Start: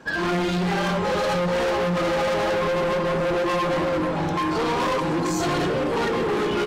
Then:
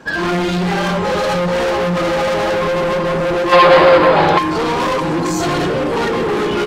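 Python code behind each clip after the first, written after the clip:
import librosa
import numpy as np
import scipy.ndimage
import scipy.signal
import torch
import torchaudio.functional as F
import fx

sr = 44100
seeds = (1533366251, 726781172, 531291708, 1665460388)

y = fx.spec_box(x, sr, start_s=3.52, length_s=0.86, low_hz=360.0, high_hz=5100.0, gain_db=10)
y = y * 10.0 ** (6.0 / 20.0)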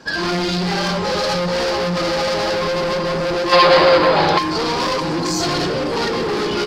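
y = fx.peak_eq(x, sr, hz=4800.0, db=13.5, octaves=0.6)
y = y * 10.0 ** (-3.5 / 20.0)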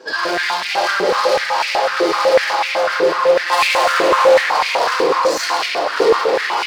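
y = fx.room_shoebox(x, sr, seeds[0], volume_m3=160.0, walls='hard', distance_m=0.63)
y = np.clip(y, -10.0 ** (-13.5 / 20.0), 10.0 ** (-13.5 / 20.0))
y = fx.filter_held_highpass(y, sr, hz=8.0, low_hz=420.0, high_hz=2300.0)
y = y * 10.0 ** (-2.5 / 20.0)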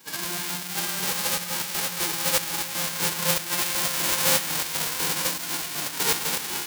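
y = fx.envelope_flatten(x, sr, power=0.1)
y = y * 10.0 ** (-11.0 / 20.0)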